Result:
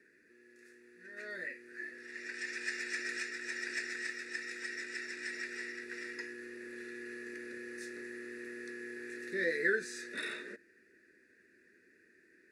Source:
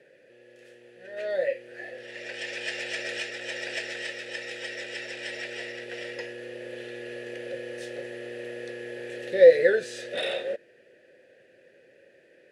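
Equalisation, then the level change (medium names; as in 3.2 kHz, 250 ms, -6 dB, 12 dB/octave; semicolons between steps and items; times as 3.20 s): treble shelf 7.7 kHz -5 dB; static phaser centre 310 Hz, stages 4; static phaser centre 1.3 kHz, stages 4; +2.0 dB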